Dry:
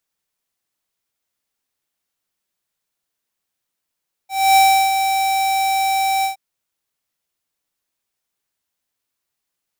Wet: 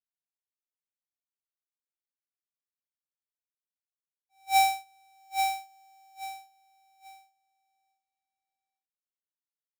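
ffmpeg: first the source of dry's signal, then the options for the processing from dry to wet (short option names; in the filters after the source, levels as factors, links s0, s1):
-f lavfi -i "aevalsrc='0.299*(2*lt(mod(775*t,1),0.5)-1)':d=2.069:s=44100,afade=t=in:d=0.271,afade=t=out:st=0.271:d=0.343:silence=0.422,afade=t=out:st=1.95:d=0.119"
-filter_complex "[0:a]agate=range=0.00708:threshold=0.251:ratio=16:detection=peak,asplit=2[s0][s1];[s1]aecho=0:1:835|1670|2505:0.531|0.133|0.0332[s2];[s0][s2]amix=inputs=2:normalize=0"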